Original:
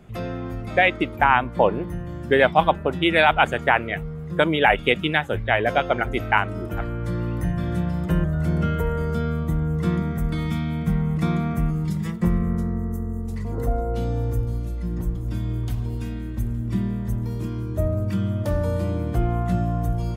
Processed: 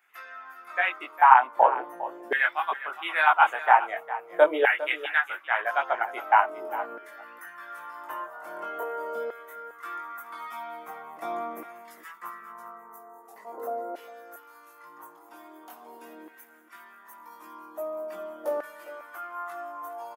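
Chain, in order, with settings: ten-band EQ 500 Hz -10 dB, 2000 Hz -4 dB, 4000 Hz -8 dB, 8000 Hz -9 dB; chorus voices 2, 0.17 Hz, delay 20 ms, depth 3.8 ms; LFO high-pass saw down 0.43 Hz 500–1900 Hz; HPF 310 Hz 24 dB/oct; bell 3200 Hz -7 dB 2.3 oct; echo 0.405 s -14.5 dB; gain +5.5 dB

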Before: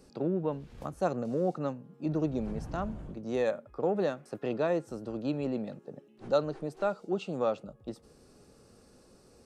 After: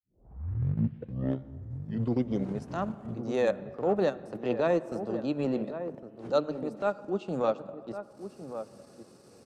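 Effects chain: tape start at the beginning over 2.72 s; HPF 90 Hz 24 dB/oct; notches 50/100/150 Hz; transient shaper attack -7 dB, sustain -11 dB; outdoor echo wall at 190 m, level -10 dB; on a send at -17.5 dB: reverb RT60 2.3 s, pre-delay 58 ms; on the sum: gain +4.5 dB

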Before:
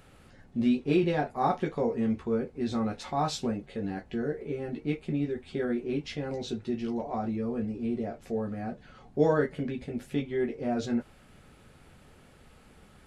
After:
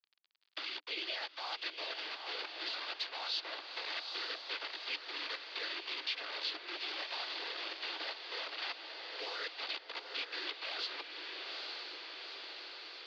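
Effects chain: frequency quantiser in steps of 4 st; bit-crush 5-bit; noise vocoder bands 16; crackle 53/s -58 dBFS; gate -46 dBFS, range -13 dB; reverse; compressor, threshold -33 dBFS, peak gain reduction 15.5 dB; reverse; Chebyshev band-pass 310–4600 Hz, order 5; differentiator; diffused feedback echo 0.854 s, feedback 45%, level -8 dB; three-band squash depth 70%; gain +11.5 dB

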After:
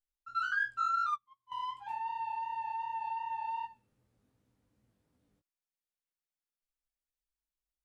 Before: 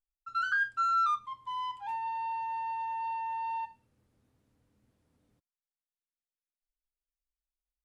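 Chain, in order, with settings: chorus 2.7 Hz, delay 15.5 ms, depth 4.6 ms; 0.89–1.52 upward expander 2.5:1, over -48 dBFS

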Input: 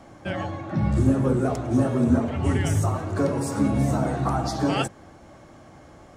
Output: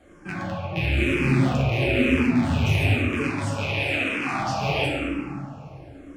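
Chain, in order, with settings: rattling part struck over -26 dBFS, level -13 dBFS; 3.23–4.39 weighting filter A; reverb RT60 2.5 s, pre-delay 5 ms, DRR -5.5 dB; endless phaser -1 Hz; gain -4.5 dB

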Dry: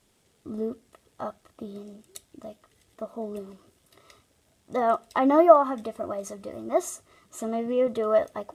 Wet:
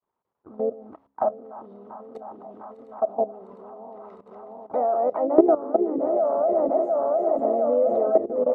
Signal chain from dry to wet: regenerating reverse delay 0.352 s, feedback 81%, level -6.5 dB; tilt +2 dB/oct; gate with hold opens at -36 dBFS; low shelf 160 Hz -3 dB; harmoniser +3 st -9 dB; doubler 29 ms -13.5 dB; level quantiser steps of 17 dB; de-hum 68.35 Hz, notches 4; envelope low-pass 410–1000 Hz down, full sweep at -26 dBFS; gain +6 dB

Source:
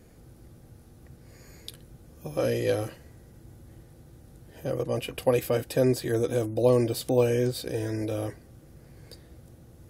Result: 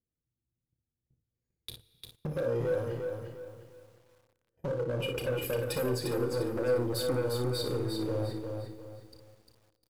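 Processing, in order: spectral contrast raised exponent 1.6; gate -43 dBFS, range -38 dB; notches 50/100 Hz; sample leveller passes 2; compressor 5:1, threshold -36 dBFS, peak gain reduction 18 dB; hard clip -32.5 dBFS, distortion -17 dB; on a send: early reflections 32 ms -9.5 dB, 58 ms -8 dB; on the sum: Schroeder reverb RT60 2.9 s, DRR 18 dB; lo-fi delay 0.351 s, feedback 35%, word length 11-bit, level -5 dB; gain +3.5 dB

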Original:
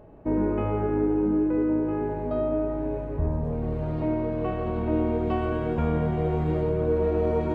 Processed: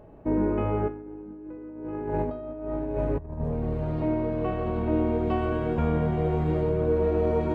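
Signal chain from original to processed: 0.88–3.41 negative-ratio compressor -31 dBFS, ratio -0.5

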